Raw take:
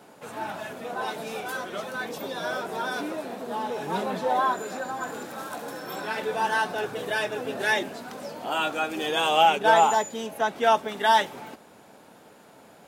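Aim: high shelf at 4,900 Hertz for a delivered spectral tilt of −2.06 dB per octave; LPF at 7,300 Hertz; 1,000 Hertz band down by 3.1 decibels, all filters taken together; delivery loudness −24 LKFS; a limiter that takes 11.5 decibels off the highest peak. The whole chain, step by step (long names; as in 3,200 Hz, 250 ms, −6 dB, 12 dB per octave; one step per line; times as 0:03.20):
low-pass filter 7,300 Hz
parametric band 1,000 Hz −3.5 dB
high-shelf EQ 4,900 Hz −9 dB
level +8.5 dB
brickwall limiter −12.5 dBFS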